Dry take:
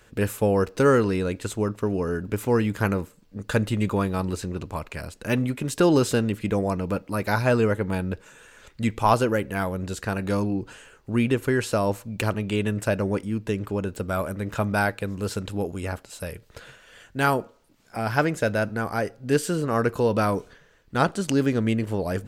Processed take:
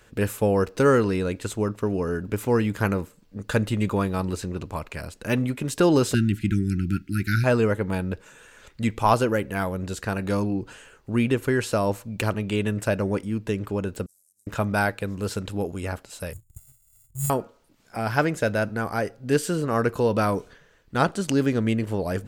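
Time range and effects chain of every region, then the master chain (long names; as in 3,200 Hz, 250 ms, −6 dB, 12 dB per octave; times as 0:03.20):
0:06.14–0:07.44: linear-phase brick-wall band-stop 390–1,300 Hz + parametric band 67 Hz +6.5 dB 2.8 octaves
0:14.06–0:14.47: variable-slope delta modulation 64 kbit/s + inverse Chebyshev high-pass filter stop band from 2,900 Hz, stop band 50 dB + downward compressor, threshold −59 dBFS
0:16.33–0:17.30: samples sorted by size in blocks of 64 samples + linear-phase brick-wall band-stop 150–6,600 Hz + leveller curve on the samples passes 1
whole clip: no processing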